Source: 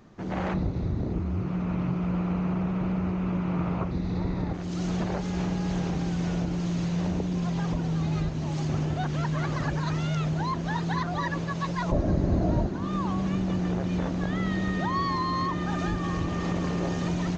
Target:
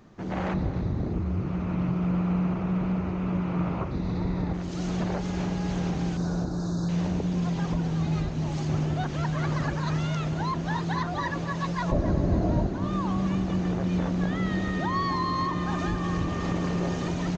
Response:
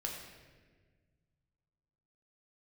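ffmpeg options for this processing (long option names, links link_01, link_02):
-filter_complex "[0:a]asettb=1/sr,asplit=3[link_01][link_02][link_03];[link_01]atrim=end=6.174[link_04];[link_02]atrim=start=6.17:end=6.89,asetpts=PTS-STARTPTS,afade=type=in:duration=0.004:curve=qsin,afade=type=out:start_time=0.716:duration=0.004:curve=qsin,asuperstop=centerf=2500:order=20:qfactor=1.3[link_05];[link_03]atrim=start=6.886[link_06];[link_04][link_05]acrossfade=duration=0.004:curve1=hsin:curve2=qsin[link_07];[link_07][link_06]acrossfade=duration=0.004:curve1=qsin:curve2=hsin,asplit=2[link_08][link_09];[link_09]adelay=273,lowpass=frequency=2600:poles=1,volume=-11dB,asplit=2[link_10][link_11];[link_11]adelay=273,lowpass=frequency=2600:poles=1,volume=0.5,asplit=2[link_12][link_13];[link_13]adelay=273,lowpass=frequency=2600:poles=1,volume=0.5,asplit=2[link_14][link_15];[link_15]adelay=273,lowpass=frequency=2600:poles=1,volume=0.5,asplit=2[link_16][link_17];[link_17]adelay=273,lowpass=frequency=2600:poles=1,volume=0.5[link_18];[link_08][link_10][link_12][link_14][link_16][link_18]amix=inputs=6:normalize=0"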